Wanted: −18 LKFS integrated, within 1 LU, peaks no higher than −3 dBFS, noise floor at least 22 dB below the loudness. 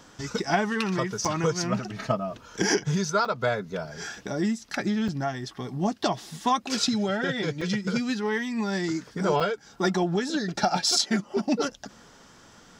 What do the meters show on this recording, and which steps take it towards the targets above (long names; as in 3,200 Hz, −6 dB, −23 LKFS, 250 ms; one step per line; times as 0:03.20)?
number of dropouts 5; longest dropout 4.5 ms; integrated loudness −27.0 LKFS; sample peak −10.5 dBFS; target loudness −18.0 LKFS
→ repair the gap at 0:01.25/0:03.25/0:05.08/0:07.61/0:09.40, 4.5 ms
level +9 dB
brickwall limiter −3 dBFS